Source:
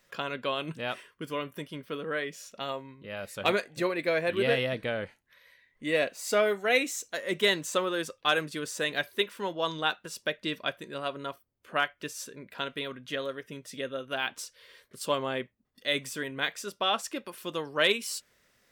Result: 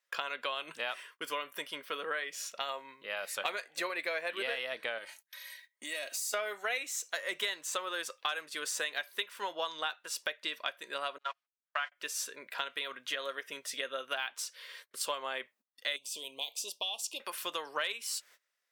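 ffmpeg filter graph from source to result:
-filter_complex "[0:a]asettb=1/sr,asplit=3[a][b][c];[a]atrim=end=4.984[d];[b]atrim=start=4.98:end=6.34,asetpts=PTS-STARTPTS,afade=t=in:d=0.004:c=qsin,afade=t=out:st=1.356:d=0.004:c=qsin,bass=f=250:g=2,treble=f=4k:g=14,aecho=1:1:3.2:0.54,atrim=end_sample=59976,acompressor=threshold=-39dB:ratio=6:attack=3.2:release=140:knee=1:detection=peak[e];[c]atrim=start=6.336[f];[d][e]acrossfade=d=0.004:c1=hsin:c2=qsin[g];[g][f]acrossfade=d=0.004:c1=qsin:c2=hsin,asettb=1/sr,asplit=3[h][i][j];[h]atrim=end=11.184[k];[i]atrim=start=11.18:end=11.92,asetpts=PTS-STARTPTS,afade=t=in:d=0.004:c=qsin,afade=t=out:st=0.736:d=0.004:c=qsin,aeval=exprs='val(0)+0.5*0.0106*sgn(val(0))':c=same,agate=range=-41dB:threshold=-34dB:ratio=16:release=100:detection=peak,highpass=790,lowpass=3.7k[l];[j]atrim=start=11.916[m];[k][l]acrossfade=d=0.004:c1=hsin:c2=qsin[n];[n][m]acrossfade=d=0.004:c1=qsin:c2=hsin,asettb=1/sr,asplit=3[o][p][q];[o]atrim=end=15.964[r];[p]atrim=start=15.96:end=17.2,asetpts=PTS-STARTPTS,afade=t=in:d=0.004:c=qsin,afade=t=out:st=1.236:d=0.004:c=qsin,acrossover=split=1900|7900[s][t][u];[s]acompressor=threshold=-43dB:ratio=4[v];[t]acompressor=threshold=-37dB:ratio=4[w];[u]acompressor=threshold=-46dB:ratio=4[x];[v][w][x]amix=inputs=3:normalize=0,asuperstop=centerf=1600:order=8:qfactor=0.94[y];[q]atrim=start=17.196[z];[r][y]acrossfade=d=0.004:c1=hsin:c2=qsin[aa];[aa][z]acrossfade=d=0.004:c1=qsin:c2=hsin,agate=range=-22dB:threshold=-57dB:ratio=16:detection=peak,highpass=770,acompressor=threshold=-39dB:ratio=6,volume=6.5dB"

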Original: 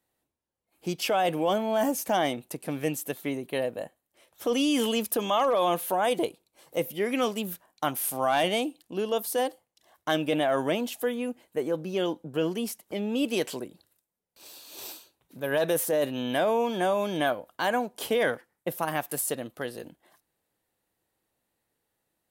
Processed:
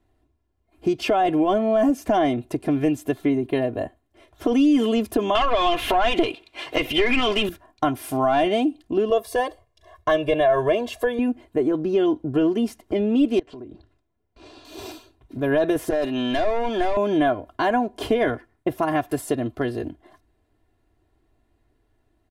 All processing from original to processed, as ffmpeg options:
-filter_complex "[0:a]asettb=1/sr,asplit=3[a][b][c];[a]atrim=end=5.354[d];[b]atrim=start=5.35:end=7.49,asetpts=PTS-STARTPTS,afade=t=in:d=0.004:c=qsin,afade=t=out:st=2.136:d=0.004:c=qsin,acompressor=threshold=-28dB:ratio=5:attack=3.2:release=140:knee=1:detection=peak,equalizer=f=2.8k:t=o:w=1.2:g=13.5,asplit=2[e][f];[f]highpass=f=720:p=1,volume=18dB,asoftclip=type=tanh:threshold=-13.5dB[g];[e][g]amix=inputs=2:normalize=0,lowpass=f=6.1k:p=1,volume=-6dB[h];[c]atrim=start=7.486[i];[d][h]acrossfade=d=0.004:c1=hsin:c2=qsin[j];[j][i]acrossfade=d=0.004:c1=qsin:c2=hsin,asettb=1/sr,asplit=3[k][l][m];[k]atrim=end=9.104[n];[l]atrim=start=9.1:end=11.19,asetpts=PTS-STARTPTS,afade=t=in:d=0.004:c=qsin,afade=t=out:st=2.086:d=0.004:c=qsin,equalizer=f=180:t=o:w=0.53:g=-8,aecho=1:1:1.8:0.83,atrim=end_sample=92169[o];[m]atrim=start=11.186[p];[n][o]acrossfade=d=0.004:c1=hsin:c2=qsin[q];[q][p]acrossfade=d=0.004:c1=qsin:c2=hsin,asettb=1/sr,asplit=3[r][s][t];[r]atrim=end=13.394[u];[s]atrim=start=13.39:end=14.65,asetpts=PTS-STARTPTS,afade=t=in:d=0.004:c=qsin,afade=t=out:st=1.256:d=0.004:c=qsin,lowpass=9k,aemphasis=mode=reproduction:type=50fm,acompressor=threshold=-46dB:ratio=12:attack=3.2:release=140:knee=1:detection=peak[v];[t]atrim=start=14.646[w];[u][v]acrossfade=d=0.004:c1=hsin:c2=qsin[x];[x][w]acrossfade=d=0.004:c1=qsin:c2=hsin,asettb=1/sr,asplit=3[y][z][aa];[y]atrim=end=15.904[ab];[z]atrim=start=15.9:end=16.97,asetpts=PTS-STARTPTS,afade=t=in:d=0.004:c=qsin,afade=t=out:st=1.066:d=0.004:c=qsin,highpass=f=460:p=1,equalizer=f=4.3k:w=0.47:g=4,asoftclip=type=hard:threshold=-26.5dB[ac];[aa]atrim=start=16.966[ad];[ab][ac]acrossfade=d=0.004:c1=hsin:c2=qsin[ae];[ae][ad]acrossfade=d=0.004:c1=qsin:c2=hsin,aemphasis=mode=reproduction:type=riaa,aecho=1:1:2.9:0.76,acompressor=threshold=-27dB:ratio=2,volume=6.5dB"

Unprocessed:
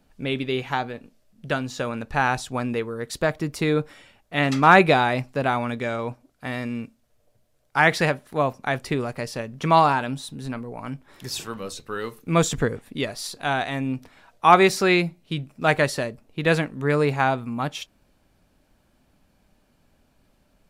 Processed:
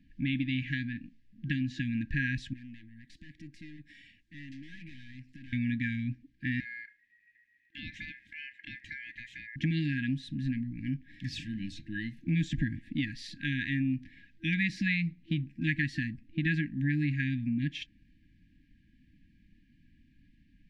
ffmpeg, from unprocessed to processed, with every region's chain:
-filter_complex "[0:a]asettb=1/sr,asplit=3[a][b][c];[a]atrim=end=2.534[d];[b]atrim=start=2.53:end=5.53,asetpts=PTS-STARTPTS,afade=t=in:d=0.004:c=qsin,afade=t=out:st=2.996:d=0.004:c=qsin,bass=f=250:g=-5,treble=f=4k:g=9,aeval=exprs='(tanh(28.2*val(0)+0.55)-tanh(0.55))/28.2':c=same,acompressor=threshold=-47dB:ratio=3:attack=3.2:release=140:knee=1:detection=peak[e];[c]atrim=start=5.526[f];[d][e]acrossfade=d=0.004:c1=hsin:c2=qsin[g];[g][f]acrossfade=d=0.004:c1=qsin:c2=hsin,asettb=1/sr,asplit=3[h][i][j];[h]atrim=end=6.604[k];[i]atrim=start=6.6:end=9.56,asetpts=PTS-STARTPTS,afade=t=in:d=0.004:c=qsin,afade=t=out:st=2.956:d=0.004:c=qsin,aeval=exprs='val(0)*sin(2*PI*1900*n/s)':c=same,acompressor=threshold=-41dB:ratio=3:attack=3.2:release=140:knee=1:detection=peak[l];[j]atrim=start=9.556[m];[k][l]acrossfade=d=0.004:c1=hsin:c2=qsin[n];[n][m]acrossfade=d=0.004:c1=qsin:c2=hsin,afftfilt=real='re*(1-between(b*sr/4096,330,1600))':imag='im*(1-between(b*sr/4096,330,1600))':win_size=4096:overlap=0.75,lowpass=2.3k,acompressor=threshold=-29dB:ratio=3,volume=1.5dB"

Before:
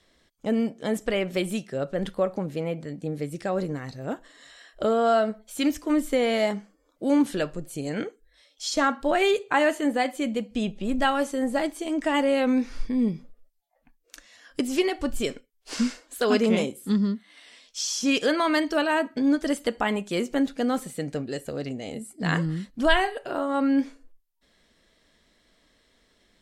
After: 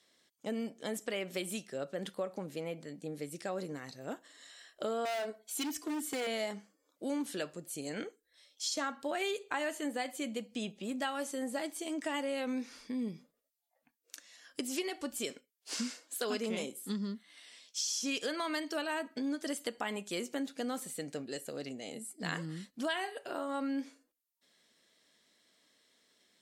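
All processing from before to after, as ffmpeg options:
-filter_complex "[0:a]asettb=1/sr,asplit=3[a][b][c];[a]atrim=end=5.054[d];[b]atrim=start=5.05:end=6.27,asetpts=PTS-STARTPTS,afade=t=in:d=0.004:c=qsin,afade=t=out:st=1.216:d=0.004:c=qsin,aecho=1:1:2.7:0.77,atrim=end_sample=53802,asoftclip=type=hard:threshold=-21.5dB[e];[c]atrim=start=6.266[f];[d][e]acrossfade=d=0.004:c1=hsin:c2=qsin[g];[g][f]acrossfade=d=0.004:c1=qsin:c2=hsin,highpass=190,highshelf=f=3.3k:g=9.5,acompressor=threshold=-24dB:ratio=3,volume=-9dB"

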